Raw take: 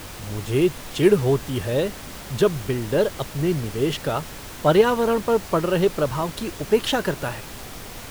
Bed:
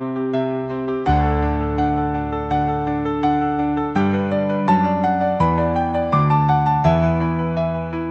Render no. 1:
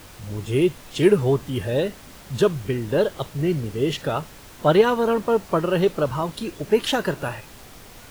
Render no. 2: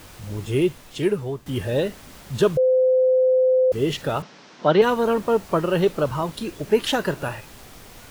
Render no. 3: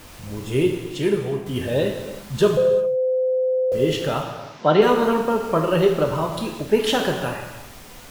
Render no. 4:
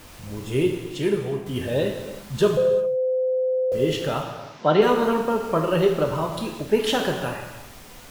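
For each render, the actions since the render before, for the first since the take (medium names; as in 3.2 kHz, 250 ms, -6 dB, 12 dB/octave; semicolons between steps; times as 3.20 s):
noise print and reduce 7 dB
0.48–1.46 s: fade out, to -13 dB; 2.57–3.72 s: bleep 514 Hz -14 dBFS; 4.22–4.82 s: elliptic band-pass 170–5600 Hz
gated-style reverb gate 420 ms falling, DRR 2 dB
trim -2 dB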